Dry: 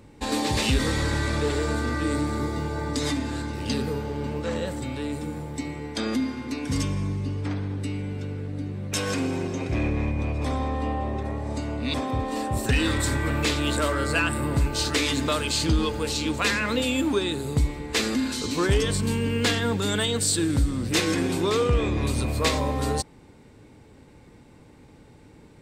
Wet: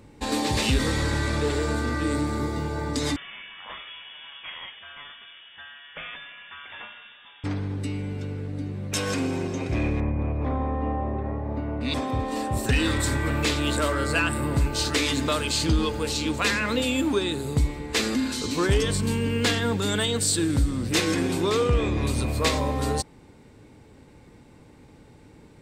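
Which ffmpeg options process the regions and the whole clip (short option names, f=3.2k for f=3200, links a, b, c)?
-filter_complex "[0:a]asettb=1/sr,asplit=3[a][b][c];[a]atrim=end=3.164[d];[b]atrim=start=3.16:end=7.44,asetpts=PTS-STARTPTS,afade=t=in:d=0.004:c=qsin,afade=t=out:st=4.276:d=0.004:c=qsin,highpass=1k,lowpass=f=3.2k:t=q:w=0.5098,lowpass=f=3.2k:t=q:w=0.6013,lowpass=f=3.2k:t=q:w=0.9,lowpass=f=3.2k:t=q:w=2.563,afreqshift=-3800[e];[c]atrim=start=7.436[f];[d][e]acrossfade=d=0.004:c1=hsin:c2=qsin[g];[g][f]acrossfade=d=0.004:c1=qsin:c2=hsin,asettb=1/sr,asplit=3[h][i][j];[h]atrim=end=10.004[k];[i]atrim=start=10:end=11.81,asetpts=PTS-STARTPTS,afade=t=in:d=0.004:c=qsin,afade=t=out:st=1.806:d=0.004:c=qsin,lowpass=1.8k,aemphasis=mode=reproduction:type=50fm[l];[j]atrim=start=11.806[m];[k][l]acrossfade=d=0.004:c1=hsin:c2=qsin[n];[n][m]acrossfade=d=0.004:c1=qsin:c2=hsin"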